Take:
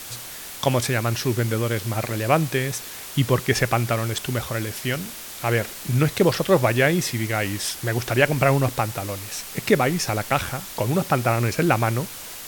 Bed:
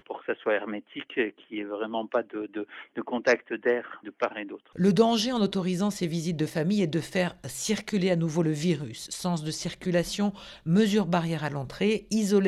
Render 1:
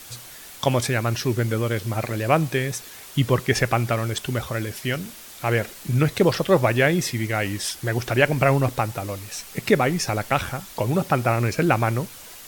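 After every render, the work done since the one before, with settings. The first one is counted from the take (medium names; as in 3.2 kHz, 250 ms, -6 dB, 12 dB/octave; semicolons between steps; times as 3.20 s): noise reduction 6 dB, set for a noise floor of -37 dBFS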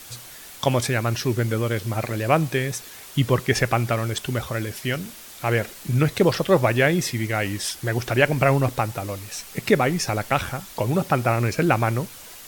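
no audible change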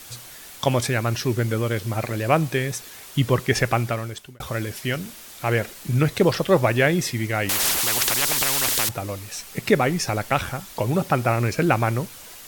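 3.77–4.40 s: fade out; 7.49–8.89 s: spectrum-flattening compressor 10:1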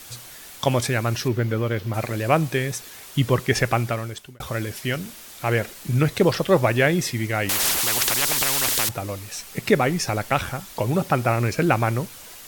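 1.28–1.94 s: peaking EQ 9.1 kHz -12.5 dB 1.4 oct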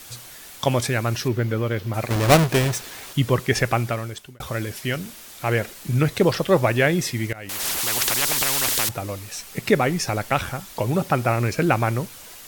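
2.10–3.13 s: square wave that keeps the level; 7.33–8.23 s: fade in equal-power, from -20 dB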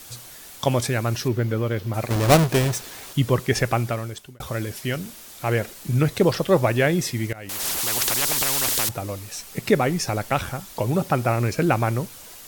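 peaking EQ 2.1 kHz -3 dB 1.8 oct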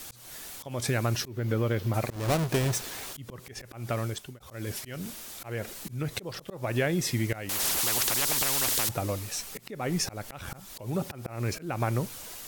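compression 6:1, threshold -23 dBFS, peak gain reduction 12.5 dB; slow attack 248 ms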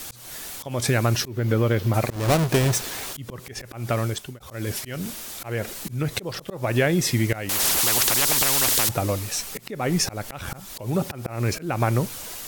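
trim +6.5 dB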